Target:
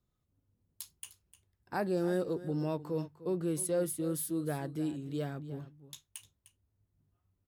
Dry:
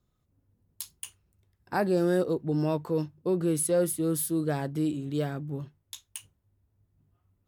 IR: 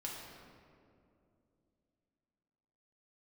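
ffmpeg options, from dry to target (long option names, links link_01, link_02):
-af "aecho=1:1:303:0.168,volume=-6.5dB"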